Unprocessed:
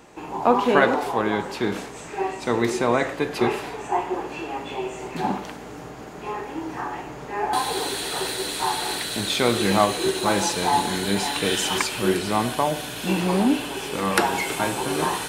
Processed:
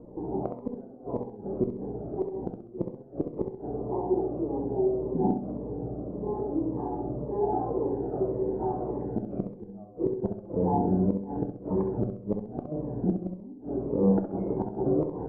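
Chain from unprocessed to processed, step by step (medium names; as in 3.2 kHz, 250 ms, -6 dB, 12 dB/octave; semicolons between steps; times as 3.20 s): inverse Chebyshev low-pass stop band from 3.6 kHz, stop band 80 dB; in parallel at -2 dB: compression 5:1, threshold -33 dBFS, peak gain reduction 16.5 dB; on the sum: inverted gate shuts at -14 dBFS, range -27 dB; flutter echo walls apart 11.3 m, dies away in 0.55 s; on a send at -9.5 dB: reverberation RT60 0.50 s, pre-delay 9 ms; on the sum: Shepard-style phaser falling 1.8 Hz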